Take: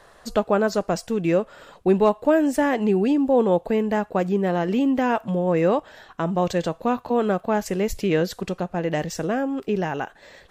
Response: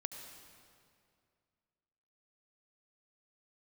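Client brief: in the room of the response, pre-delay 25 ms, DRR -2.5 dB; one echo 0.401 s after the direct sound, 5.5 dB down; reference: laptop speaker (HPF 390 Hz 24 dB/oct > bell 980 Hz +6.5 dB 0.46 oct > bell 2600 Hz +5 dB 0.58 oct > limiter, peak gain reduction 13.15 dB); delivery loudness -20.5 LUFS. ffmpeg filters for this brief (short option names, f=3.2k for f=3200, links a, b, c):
-filter_complex "[0:a]aecho=1:1:401:0.531,asplit=2[a][b];[1:a]atrim=start_sample=2205,adelay=25[c];[b][c]afir=irnorm=-1:irlink=0,volume=4dB[d];[a][d]amix=inputs=2:normalize=0,highpass=f=390:w=0.5412,highpass=f=390:w=1.3066,equalizer=f=980:t=o:w=0.46:g=6.5,equalizer=f=2.6k:t=o:w=0.58:g=5,volume=2dB,alimiter=limit=-11.5dB:level=0:latency=1"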